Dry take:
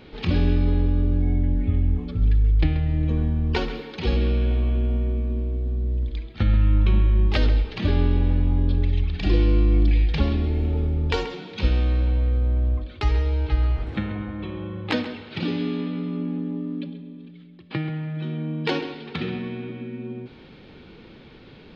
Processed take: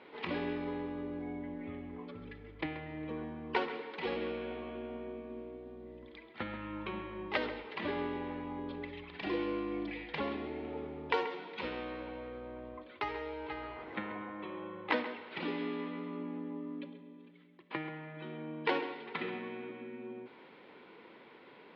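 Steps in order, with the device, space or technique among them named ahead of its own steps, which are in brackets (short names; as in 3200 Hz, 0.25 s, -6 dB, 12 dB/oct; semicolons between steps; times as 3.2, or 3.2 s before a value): tin-can telephone (BPF 400–2500 Hz; small resonant body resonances 1000/2000 Hz, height 11 dB, ringing for 45 ms); gain -4.5 dB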